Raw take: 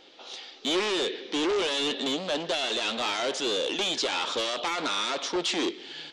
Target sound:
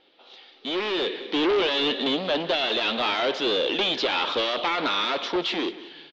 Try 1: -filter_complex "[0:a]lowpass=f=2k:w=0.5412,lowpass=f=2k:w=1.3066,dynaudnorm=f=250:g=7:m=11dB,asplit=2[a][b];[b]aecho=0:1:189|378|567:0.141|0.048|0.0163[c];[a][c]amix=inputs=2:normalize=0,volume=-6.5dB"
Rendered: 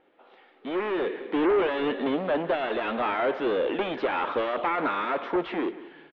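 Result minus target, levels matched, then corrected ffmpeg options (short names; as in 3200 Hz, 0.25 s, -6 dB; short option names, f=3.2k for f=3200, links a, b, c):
4000 Hz band -14.0 dB
-filter_complex "[0:a]lowpass=f=4.1k:w=0.5412,lowpass=f=4.1k:w=1.3066,dynaudnorm=f=250:g=7:m=11dB,asplit=2[a][b];[b]aecho=0:1:189|378|567:0.141|0.048|0.0163[c];[a][c]amix=inputs=2:normalize=0,volume=-6.5dB"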